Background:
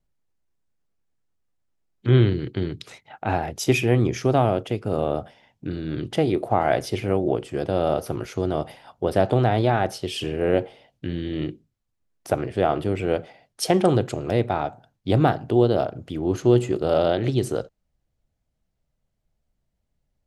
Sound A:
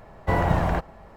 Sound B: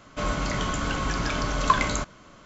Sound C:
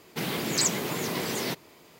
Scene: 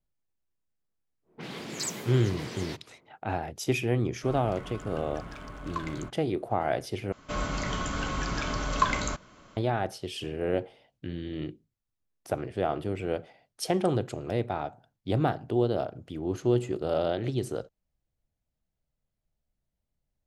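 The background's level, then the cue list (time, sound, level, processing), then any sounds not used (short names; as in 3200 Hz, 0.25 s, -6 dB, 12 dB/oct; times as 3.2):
background -7.5 dB
1.22 add C -8.5 dB, fades 0.10 s + low-pass opened by the level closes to 610 Hz, open at -24.5 dBFS
4.06 add B -15 dB + Wiener smoothing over 9 samples
7.12 replace with B -4 dB
not used: A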